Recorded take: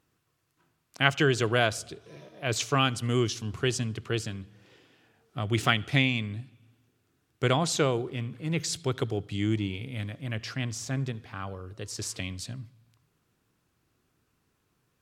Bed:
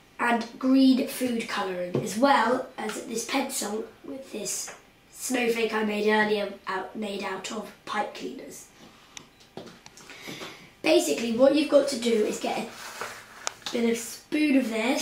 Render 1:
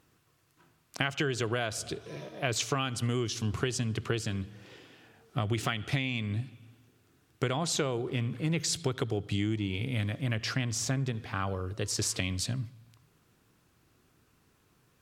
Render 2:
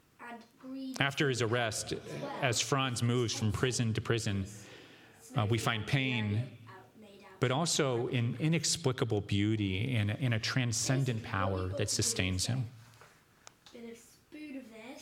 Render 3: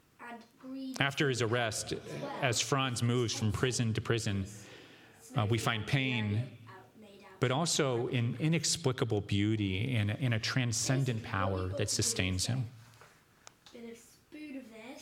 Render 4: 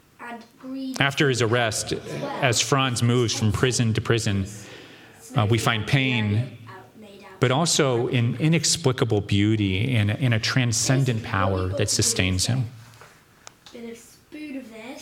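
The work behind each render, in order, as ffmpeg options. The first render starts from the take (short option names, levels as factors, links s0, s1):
-filter_complex "[0:a]asplit=2[s0][s1];[s1]alimiter=limit=0.168:level=0:latency=1,volume=1[s2];[s0][s2]amix=inputs=2:normalize=0,acompressor=threshold=0.0501:ratio=12"
-filter_complex "[1:a]volume=0.075[s0];[0:a][s0]amix=inputs=2:normalize=0"
-af anull
-af "volume=3.16,alimiter=limit=0.794:level=0:latency=1"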